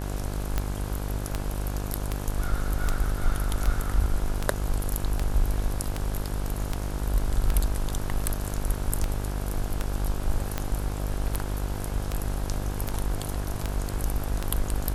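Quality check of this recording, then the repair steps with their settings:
buzz 50 Hz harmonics 34 -31 dBFS
tick 78 rpm -12 dBFS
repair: de-click; de-hum 50 Hz, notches 34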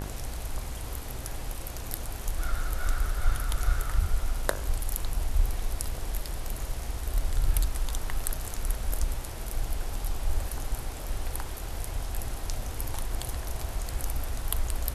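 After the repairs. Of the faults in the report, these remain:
none

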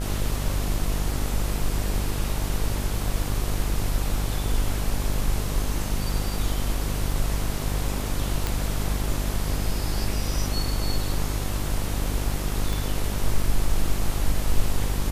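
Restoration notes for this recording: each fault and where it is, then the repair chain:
buzz 50 Hz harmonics 27 -28 dBFS
8.47 pop
12.73 pop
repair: de-click; de-hum 50 Hz, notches 27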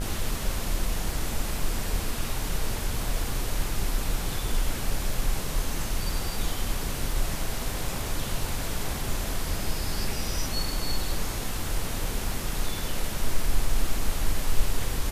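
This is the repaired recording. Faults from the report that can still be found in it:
12.73 pop

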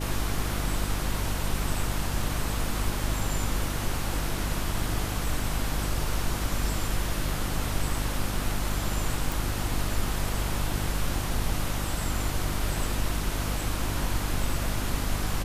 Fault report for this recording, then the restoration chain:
hum 50 Hz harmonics 7 -32 dBFS
9.32 pop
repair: de-click; de-hum 50 Hz, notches 7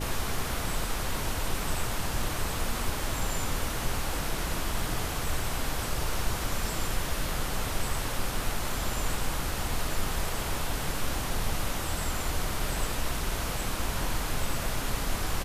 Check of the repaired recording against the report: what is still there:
none

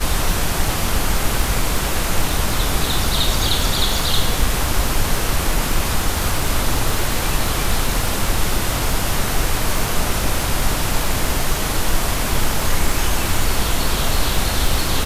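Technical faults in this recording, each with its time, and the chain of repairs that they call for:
crackle 43/s -20 dBFS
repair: de-click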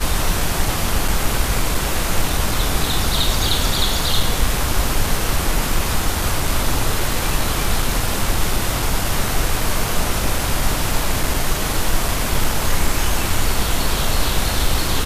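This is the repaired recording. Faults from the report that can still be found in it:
none

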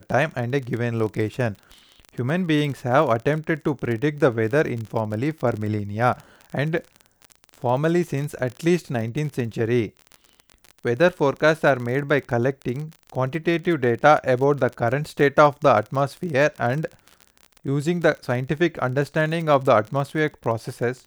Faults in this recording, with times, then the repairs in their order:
crackle 31/s -28 dBFS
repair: de-click

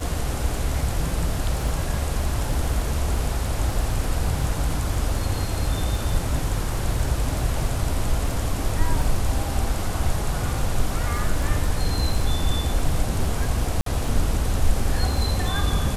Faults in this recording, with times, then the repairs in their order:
crackle 24/s -29 dBFS
13.81–13.86 gap 53 ms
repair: de-click; interpolate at 13.81, 53 ms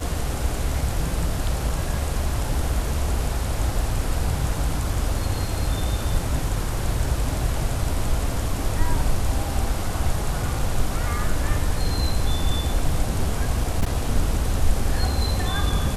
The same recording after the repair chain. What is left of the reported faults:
none

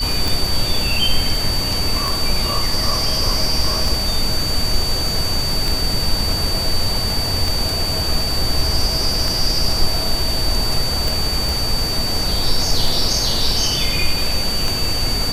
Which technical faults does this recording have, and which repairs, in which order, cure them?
tick 33 1/3 rpm
tone 4600 Hz -21 dBFS
11.49 pop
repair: de-click; notch 4600 Hz, Q 30

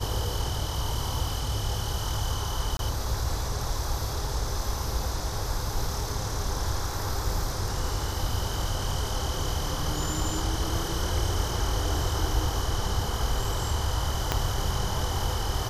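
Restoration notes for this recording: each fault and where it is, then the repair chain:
2.77–2.79 gap 22 ms
14.32 pop -9 dBFS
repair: de-click; interpolate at 2.77, 22 ms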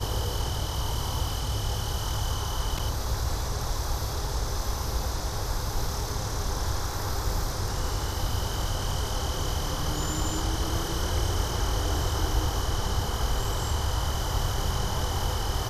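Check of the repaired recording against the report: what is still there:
14.32 pop

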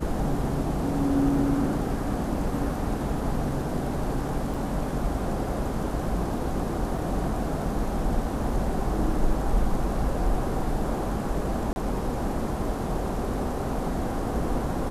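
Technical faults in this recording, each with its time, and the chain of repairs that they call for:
4.54 gap 3.2 ms
6.98 gap 3.2 ms
11.73–11.76 gap 31 ms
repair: interpolate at 4.54, 3.2 ms; interpolate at 6.98, 3.2 ms; interpolate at 11.73, 31 ms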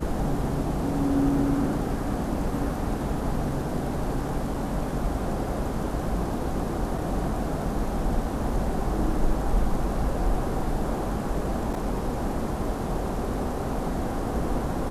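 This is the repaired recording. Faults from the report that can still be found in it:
none

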